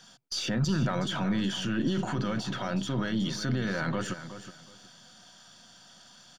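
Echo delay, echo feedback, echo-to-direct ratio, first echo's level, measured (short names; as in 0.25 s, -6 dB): 0.369 s, 23%, -12.0 dB, -12.0 dB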